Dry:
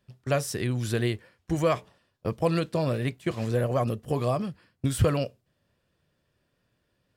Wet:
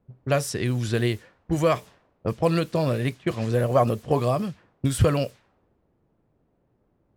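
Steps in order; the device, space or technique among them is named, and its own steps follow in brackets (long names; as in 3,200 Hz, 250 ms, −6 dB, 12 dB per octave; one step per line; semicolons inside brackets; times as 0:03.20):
0:03.75–0:04.20: parametric band 770 Hz +5.5 dB 1.9 octaves
cassette deck with a dynamic noise filter (white noise bed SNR 28 dB; low-pass that shuts in the quiet parts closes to 390 Hz, open at −24 dBFS)
level +3 dB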